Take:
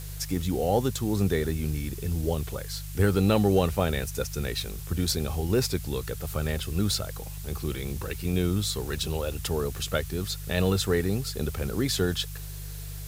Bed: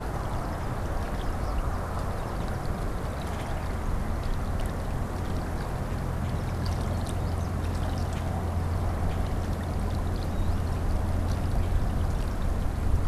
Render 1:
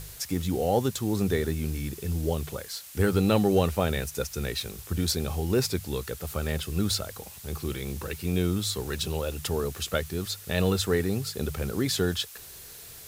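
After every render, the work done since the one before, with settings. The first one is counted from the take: de-hum 50 Hz, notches 3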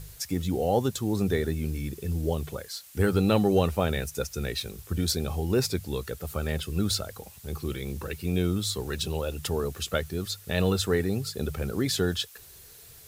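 denoiser 6 dB, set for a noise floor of -45 dBFS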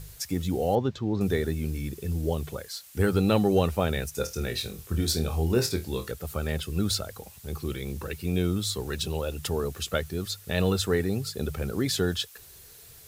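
0.75–1.21 air absorption 210 m; 4.13–6.12 flutter echo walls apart 4.3 m, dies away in 0.21 s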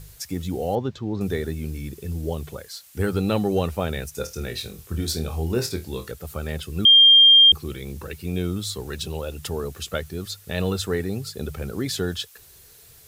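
6.85–7.52 bleep 3200 Hz -8.5 dBFS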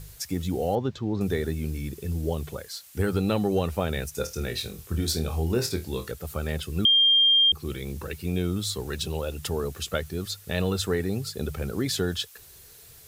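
compressor 3:1, threshold -20 dBFS, peak gain reduction 7 dB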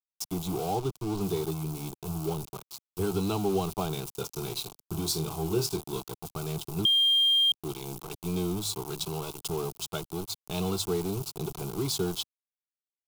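sample gate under -31 dBFS; fixed phaser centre 360 Hz, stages 8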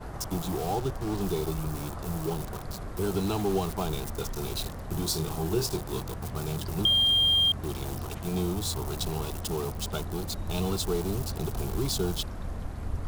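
add bed -7.5 dB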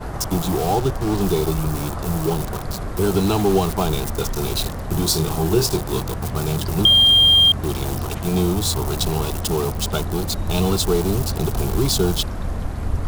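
gain +10 dB

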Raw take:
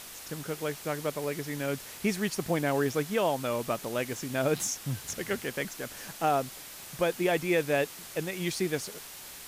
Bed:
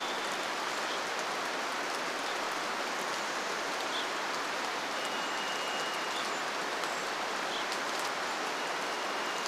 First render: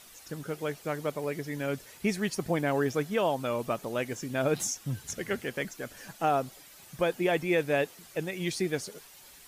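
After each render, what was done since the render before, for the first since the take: denoiser 10 dB, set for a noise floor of -45 dBFS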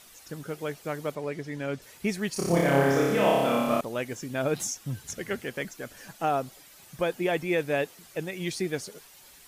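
1.15–1.82 air absorption 53 m; 2.33–3.81 flutter echo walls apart 5 m, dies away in 1.4 s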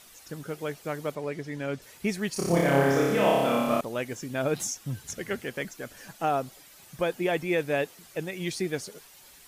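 nothing audible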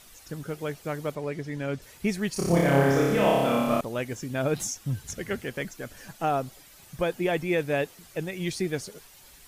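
low shelf 100 Hz +11.5 dB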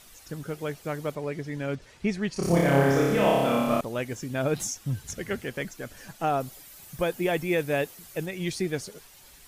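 1.75–2.43 air absorption 79 m; 6.4–8.26 high shelf 10000 Hz +10 dB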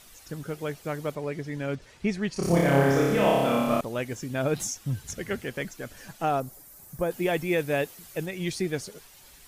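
6.4–7.11 bell 3100 Hz -14 dB 1.5 oct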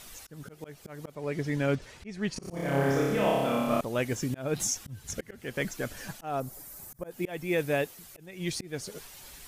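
auto swell 0.399 s; vocal rider within 4 dB 0.5 s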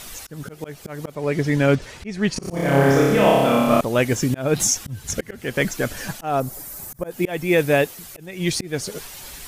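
gain +10.5 dB

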